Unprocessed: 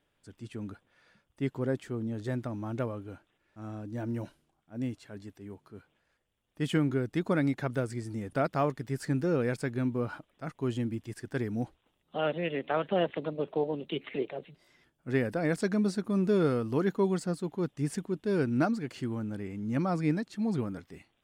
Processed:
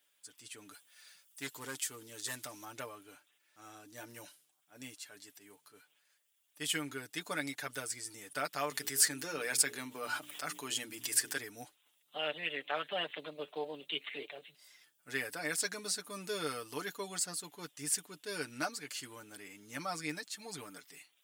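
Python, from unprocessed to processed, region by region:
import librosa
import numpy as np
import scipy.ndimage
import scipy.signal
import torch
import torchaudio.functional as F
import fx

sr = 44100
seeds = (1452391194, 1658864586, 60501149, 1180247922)

y = fx.chain(x, sr, fx.high_shelf(hz=4000.0, db=10.5),
    fx.clip_hard(threshold_db=-25.0),
    fx.doppler_dist(depth_ms=0.13), at=(0.71, 2.65))
y = fx.chain(y, sr, fx.highpass(hz=150.0, slope=12),
    fx.hum_notches(base_hz=60, count=7),
    fx.env_flatten(amount_pct=50), at=(8.71, 11.38))
y = np.diff(y, prepend=0.0)
y = y + 0.65 * np.pad(y, (int(6.8 * sr / 1000.0), 0))[:len(y)]
y = F.gain(torch.from_numpy(y), 10.0).numpy()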